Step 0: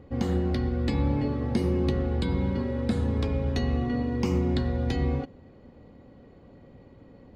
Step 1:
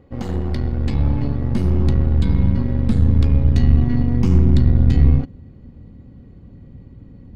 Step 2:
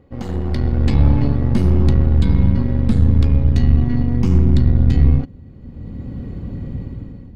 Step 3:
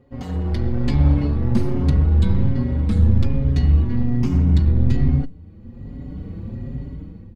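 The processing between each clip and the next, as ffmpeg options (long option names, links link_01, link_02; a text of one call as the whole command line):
ffmpeg -i in.wav -af "aeval=exprs='0.2*(cos(1*acos(clip(val(0)/0.2,-1,1)))-cos(1*PI/2))+0.0158*(cos(5*acos(clip(val(0)/0.2,-1,1)))-cos(5*PI/2))+0.0282*(cos(6*acos(clip(val(0)/0.2,-1,1)))-cos(6*PI/2))+0.0112*(cos(7*acos(clip(val(0)/0.2,-1,1)))-cos(7*PI/2))':channel_layout=same,asubboost=boost=6.5:cutoff=220,volume=-1dB" out.wav
ffmpeg -i in.wav -af "dynaudnorm=framelen=170:gausssize=7:maxgain=15dB,volume=-1dB" out.wav
ffmpeg -i in.wav -filter_complex "[0:a]asplit=2[link_01][link_02];[link_02]adelay=5.3,afreqshift=1.2[link_03];[link_01][link_03]amix=inputs=2:normalize=1" out.wav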